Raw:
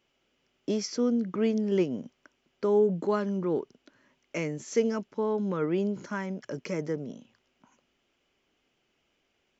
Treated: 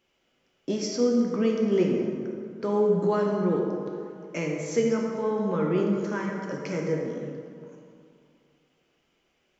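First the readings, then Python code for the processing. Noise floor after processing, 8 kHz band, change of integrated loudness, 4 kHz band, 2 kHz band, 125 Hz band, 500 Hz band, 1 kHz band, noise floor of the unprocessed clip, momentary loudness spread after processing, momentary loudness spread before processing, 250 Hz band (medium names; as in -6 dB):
-71 dBFS, no reading, +2.5 dB, +2.5 dB, +3.0 dB, +4.0 dB, +3.0 dB, +4.0 dB, -75 dBFS, 12 LU, 12 LU, +3.0 dB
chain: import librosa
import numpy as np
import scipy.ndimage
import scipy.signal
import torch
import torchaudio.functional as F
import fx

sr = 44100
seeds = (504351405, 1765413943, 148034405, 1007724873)

y = fx.rev_plate(x, sr, seeds[0], rt60_s=2.4, hf_ratio=0.5, predelay_ms=0, drr_db=-1.0)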